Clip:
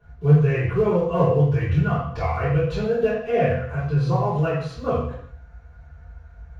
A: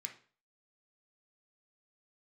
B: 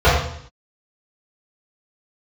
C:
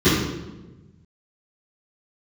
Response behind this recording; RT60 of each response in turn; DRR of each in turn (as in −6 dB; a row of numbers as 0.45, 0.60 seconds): B; 0.40, 0.60, 1.1 seconds; 2.5, −13.5, −19.0 decibels